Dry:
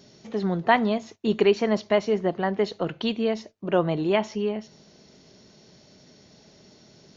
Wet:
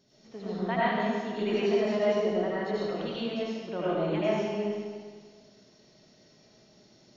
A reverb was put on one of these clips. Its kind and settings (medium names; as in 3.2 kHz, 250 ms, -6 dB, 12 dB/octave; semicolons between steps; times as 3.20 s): algorithmic reverb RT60 1.7 s, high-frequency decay 0.9×, pre-delay 55 ms, DRR -9.5 dB; trim -15 dB